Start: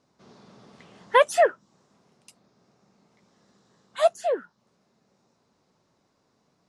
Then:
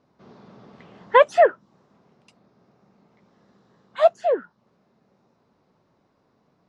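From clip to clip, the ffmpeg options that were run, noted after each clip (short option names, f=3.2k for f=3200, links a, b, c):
-af "lowpass=5.3k,highshelf=f=3.1k:g=-10.5,volume=4.5dB"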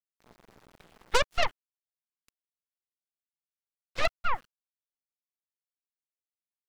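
-af "acompressor=threshold=-32dB:ratio=2,aeval=exprs='0.15*(cos(1*acos(clip(val(0)/0.15,-1,1)))-cos(1*PI/2))+0.0596*(cos(3*acos(clip(val(0)/0.15,-1,1)))-cos(3*PI/2))+0.0531*(cos(6*acos(clip(val(0)/0.15,-1,1)))-cos(6*PI/2))':c=same,aeval=exprs='val(0)*gte(abs(val(0)),0.00251)':c=same"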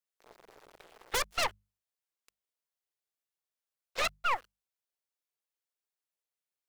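-af "lowshelf=f=310:t=q:w=1.5:g=-9.5,aeval=exprs='0.0562*(abs(mod(val(0)/0.0562+3,4)-2)-1)':c=same,bandreject=f=50:t=h:w=6,bandreject=f=100:t=h:w=6,bandreject=f=150:t=h:w=6,bandreject=f=200:t=h:w=6,volume=1.5dB"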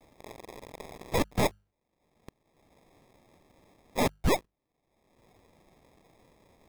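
-filter_complex "[0:a]asplit=2[a][b];[b]acompressor=mode=upward:threshold=-33dB:ratio=2.5,volume=-2.5dB[c];[a][c]amix=inputs=2:normalize=0,acrusher=samples=30:mix=1:aa=0.000001"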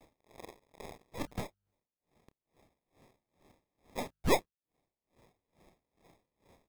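-filter_complex "[0:a]asplit=2[a][b];[b]adelay=29,volume=-12dB[c];[a][c]amix=inputs=2:normalize=0,aeval=exprs='val(0)*pow(10,-27*(0.5-0.5*cos(2*PI*2.3*n/s))/20)':c=same"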